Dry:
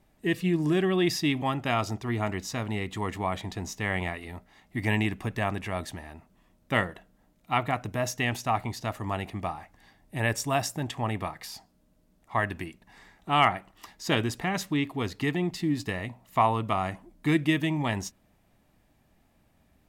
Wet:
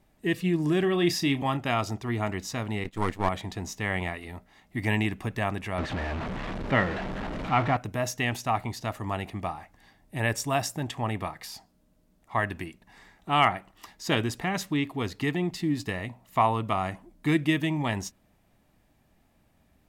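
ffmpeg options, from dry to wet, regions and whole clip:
-filter_complex "[0:a]asettb=1/sr,asplit=3[a][b][c];[a]atrim=end=0.804[d];[b]atrim=start=0.8:end=1.57,asetpts=PTS-STARTPTS,afade=t=in:d=0.004:c=qsin,afade=t=out:st=0.766:d=0.004:c=qsin,acompressor=mode=upward:threshold=-26dB:ratio=2.5:attack=3.2:release=140:knee=2.83:detection=peak,asplit=2[e][f];[f]adelay=29,volume=-10dB[g];[e][g]amix=inputs=2:normalize=0,atrim=end_sample=33957[h];[c]atrim=start=1.566[i];[d][h]acrossfade=d=0.004:c1=hsin:c2=qsin[j];[j][i]acrossfade=d=0.004:c1=qsin:c2=hsin,asettb=1/sr,asplit=3[k][l][m];[k]atrim=end=2.844[n];[l]atrim=start=2.84:end=3.29,asetpts=PTS-STARTPTS,afade=t=in:d=0.004:c=qsin,afade=t=out:st=0.446:d=0.004:c=qsin,aeval=exprs='if(lt(val(0),0),0.251*val(0),val(0))':c=same,acontrast=56,agate=range=-33dB:threshold=-28dB:ratio=3:release=100:detection=peak[o];[m]atrim=start=3.286[p];[n][o]acrossfade=d=0.004:c1=hsin:c2=qsin[q];[q][p]acrossfade=d=0.004:c1=qsin:c2=hsin,asettb=1/sr,asplit=3[r][s][t];[r]atrim=end=5.784[u];[s]atrim=start=5.78:end=7.77,asetpts=PTS-STARTPTS,afade=t=in:d=0.004:c=qsin,afade=t=out:st=1.986:d=0.004:c=qsin,aeval=exprs='val(0)+0.5*0.0473*sgn(val(0))':c=same,lowpass=2.6k,asplit=2[v][w];[w]adelay=15,volume=-13dB[x];[v][x]amix=inputs=2:normalize=0,atrim=end_sample=87759[y];[t]atrim=start=7.766[z];[u][y]acrossfade=d=0.004:c1=hsin:c2=qsin[aa];[aa][z]acrossfade=d=0.004:c1=qsin:c2=hsin"

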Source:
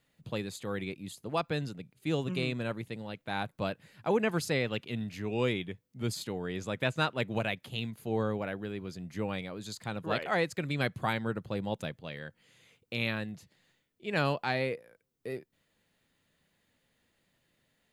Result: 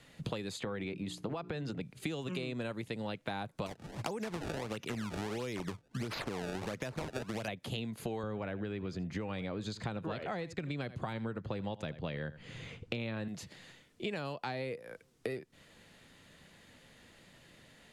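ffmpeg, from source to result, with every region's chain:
-filter_complex "[0:a]asettb=1/sr,asplit=3[a][b][c];[a]atrim=end=0.614[d];[b]atrim=start=0.61:end=1.81,asetpts=PTS-STARTPTS,afade=t=in:d=0.004:c=qsin,afade=t=out:st=1.196:d=0.004:c=qsin,lowpass=f=2.7k:p=1,bandreject=f=60:t=h:w=6,bandreject=f=120:t=h:w=6,bandreject=f=180:t=h:w=6,bandreject=f=240:t=h:w=6,bandreject=f=300:t=h:w=6,bandreject=f=360:t=h:w=6,bandreject=f=420:t=h:w=6,acompressor=threshold=-37dB:ratio=6:attack=3.2:release=140:knee=1:detection=peak[e];[c]atrim=start=1.806[f];[d][e]acrossfade=d=0.004:c1=hsin:c2=qsin[g];[g][f]acrossfade=d=0.004:c1=qsin:c2=hsin,asettb=1/sr,asplit=3[h][i][j];[h]atrim=end=3.664[k];[i]atrim=start=3.66:end=7.48,asetpts=PTS-STARTPTS,afade=t=in:d=0.004:c=qsin,afade=t=out:st=3.816:d=0.004:c=qsin,acompressor=threshold=-36dB:ratio=4:attack=3.2:release=140:knee=1:detection=peak,acrusher=samples=24:mix=1:aa=0.000001:lfo=1:lforange=38.4:lforate=1.5[l];[j]atrim=start=7.476[m];[k][l]acrossfade=d=0.004:c1=hsin:c2=qsin[n];[n][m]acrossfade=d=0.004:c1=qsin:c2=hsin,asettb=1/sr,asplit=3[o][p][q];[o]atrim=end=8.234[r];[p]atrim=start=8.23:end=13.28,asetpts=PTS-STARTPTS,afade=t=in:d=0.004:c=qsin,afade=t=out:st=5.046:d=0.004:c=qsin,aemphasis=mode=reproduction:type=bsi,aecho=1:1:80:0.106,atrim=end_sample=222705[s];[q]atrim=start=13.276[t];[r][s]acrossfade=d=0.004:c1=hsin:c2=qsin[u];[u][t]acrossfade=d=0.004:c1=qsin:c2=hsin,acrossover=split=250|1000|4100[v][w][x][y];[v]acompressor=threshold=-46dB:ratio=4[z];[w]acompressor=threshold=-40dB:ratio=4[aa];[x]acompressor=threshold=-47dB:ratio=4[ab];[y]acompressor=threshold=-53dB:ratio=4[ac];[z][aa][ab][ac]amix=inputs=4:normalize=0,lowpass=9.7k,acompressor=threshold=-50dB:ratio=10,volume=15dB"

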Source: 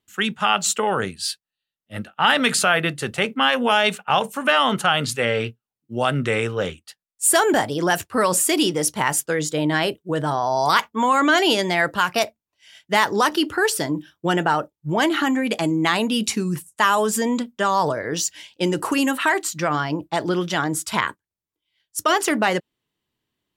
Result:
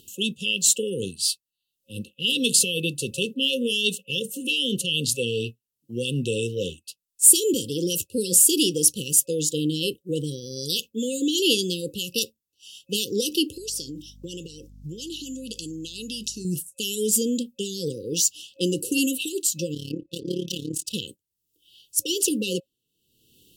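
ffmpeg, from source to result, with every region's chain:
-filter_complex "[0:a]asettb=1/sr,asplit=3[a][b][c];[a]atrim=end=13.564[d];[b]atrim=start=13.56:end=16.45,asetpts=PTS-STARTPTS,afade=t=in:d=0.004:c=qsin,afade=t=out:st=2.886:d=0.004:c=qsin,equalizer=f=5.5k:w=1.1:g=13.5,acompressor=threshold=-28dB:ratio=16:attack=3.2:release=140:knee=1:detection=peak,aeval=exprs='val(0)+0.00398*(sin(2*PI*50*n/s)+sin(2*PI*2*50*n/s)/2+sin(2*PI*3*50*n/s)/3+sin(2*PI*4*50*n/s)/4+sin(2*PI*5*50*n/s)/5)':c=same[e];[c]atrim=start=16.446[f];[d][e]acrossfade=d=0.004:c1=hsin:c2=qsin[g];[g][f]acrossfade=d=0.004:c1=qsin:c2=hsin,asettb=1/sr,asplit=3[h][i][j];[h]atrim=end=19.744[k];[i]atrim=start=19.74:end=20.94,asetpts=PTS-STARTPTS,afade=t=in:d=0.004:c=qsin,afade=t=out:st=1.196:d=0.004:c=qsin,adynamicsmooth=sensitivity=8:basefreq=3.6k,tremolo=f=35:d=0.824[l];[j]atrim=start=20.936[m];[k][l]acrossfade=d=0.004:c1=hsin:c2=qsin[n];[n][m]acrossfade=d=0.004:c1=qsin:c2=hsin,aemphasis=mode=production:type=cd,afftfilt=real='re*(1-between(b*sr/4096,540,2600))':imag='im*(1-between(b*sr/4096,540,2600))':win_size=4096:overlap=0.75,acompressor=mode=upward:threshold=-35dB:ratio=2.5,volume=-2.5dB"

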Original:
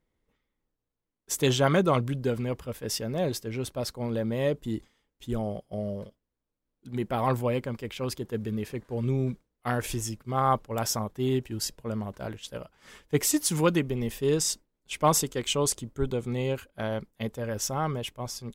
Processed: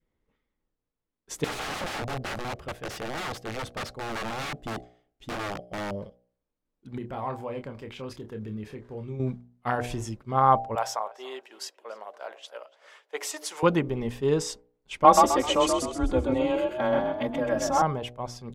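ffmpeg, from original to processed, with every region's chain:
-filter_complex "[0:a]asettb=1/sr,asplit=3[a][b][c];[a]atrim=end=1.444[d];[b]atrim=start=1.44:end=5.91,asetpts=PTS-STARTPTS,afade=t=in:d=0.004:c=qsin,afade=t=out:st=4.466:d=0.004:c=qsin,aeval=exprs='(mod(23.7*val(0)+1,2)-1)/23.7':c=same,bandreject=f=970:w=7[e];[c]atrim=start=5.906[f];[d][e]acrossfade=d=0.004:c1=hsin:c2=qsin[g];[g][f]acrossfade=d=0.004:c1=qsin:c2=hsin,asettb=1/sr,asplit=3[h][i][j];[h]atrim=end=6.984[k];[i]atrim=start=6.98:end=9.2,asetpts=PTS-STARTPTS,afade=t=in:d=0.004:c=qsin,afade=t=out:st=2.216:d=0.004:c=qsin,acompressor=threshold=-39dB:ratio=2:attack=3.2:release=140:knee=1:detection=peak,asplit=2[l][m];[m]adelay=28,volume=-7.5dB[n];[l][n]amix=inputs=2:normalize=0,atrim=end_sample=97902[o];[j]atrim=start=9.196[p];[k][o]acrossfade=d=0.004:c1=hsin:c2=qsin[q];[q][p]acrossfade=d=0.004:c1=qsin:c2=hsin,asettb=1/sr,asplit=3[r][s][t];[r]atrim=end=10.754[u];[s]atrim=start=10.75:end=13.63,asetpts=PTS-STARTPTS,afade=t=in:d=0.004:c=qsin,afade=t=out:st=2.876:d=0.004:c=qsin,highpass=f=540:w=0.5412,highpass=f=540:w=1.3066,asplit=2[v][w];[w]adelay=288,lowpass=f=3.2k:p=1,volume=-19dB,asplit=2[x][y];[y]adelay=288,lowpass=f=3.2k:p=1,volume=0.33,asplit=2[z][aa];[aa]adelay=288,lowpass=f=3.2k:p=1,volume=0.33[ab];[v][x][z][ab]amix=inputs=4:normalize=0,atrim=end_sample=127008[ac];[t]atrim=start=13.626[ad];[u][ac]acrossfade=d=0.004:c1=hsin:c2=qsin[ae];[ae][ad]acrossfade=d=0.004:c1=qsin:c2=hsin,asettb=1/sr,asplit=3[af][ag][ah];[af]atrim=end=15.044[ai];[ag]atrim=start=15.04:end=17.82,asetpts=PTS-STARTPTS,afade=t=in:d=0.004:c=qsin,afade=t=out:st=2.776:d=0.004:c=qsin,aecho=1:1:3.7:0.9,atrim=end_sample=122598,afreqshift=18,asplit=6[aj][ak][al][am][an][ao];[ak]adelay=129,afreqshift=36,volume=-4dB[ap];[al]adelay=258,afreqshift=72,volume=-12.6dB[aq];[am]adelay=387,afreqshift=108,volume=-21.3dB[ar];[an]adelay=516,afreqshift=144,volume=-29.9dB[as];[ao]adelay=645,afreqshift=180,volume=-38.5dB[at];[aj][ap][aq][ar][as][at]amix=inputs=6:normalize=0,atrim=end_sample=122598[au];[ah]atrim=start=17.816[av];[ai][au]acrossfade=d=0.004:c1=hsin:c2=qsin[aw];[aw][av]acrossfade=d=0.004:c1=qsin:c2=hsin,aemphasis=mode=reproduction:type=50fm,bandreject=f=60.66:t=h:w=4,bandreject=f=121.32:t=h:w=4,bandreject=f=181.98:t=h:w=4,bandreject=f=242.64:t=h:w=4,bandreject=f=303.3:t=h:w=4,bandreject=f=363.96:t=h:w=4,bandreject=f=424.62:t=h:w=4,bandreject=f=485.28:t=h:w=4,bandreject=f=545.94:t=h:w=4,bandreject=f=606.6:t=h:w=4,bandreject=f=667.26:t=h:w=4,bandreject=f=727.92:t=h:w=4,bandreject=f=788.58:t=h:w=4,adynamicequalizer=threshold=0.00891:dfrequency=860:dqfactor=1.3:tfrequency=860:tqfactor=1.3:attack=5:release=100:ratio=0.375:range=3.5:mode=boostabove:tftype=bell"

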